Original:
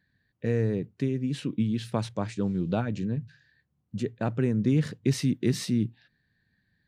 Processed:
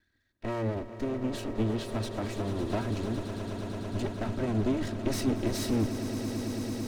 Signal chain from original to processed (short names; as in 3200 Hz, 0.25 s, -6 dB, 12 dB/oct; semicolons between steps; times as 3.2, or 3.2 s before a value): minimum comb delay 3.1 ms; swelling echo 0.111 s, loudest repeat 8, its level -13.5 dB